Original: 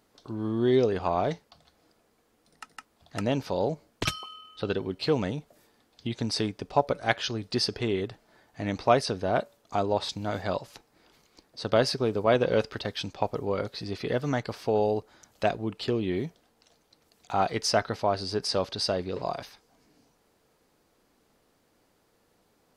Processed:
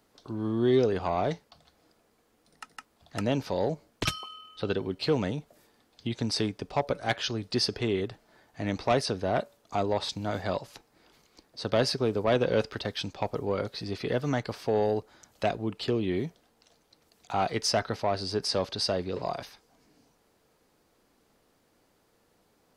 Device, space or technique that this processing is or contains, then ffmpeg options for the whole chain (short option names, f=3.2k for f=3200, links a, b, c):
one-band saturation: -filter_complex "[0:a]acrossover=split=360|2700[a][b][c];[b]asoftclip=type=tanh:threshold=-20dB[d];[a][d][c]amix=inputs=3:normalize=0"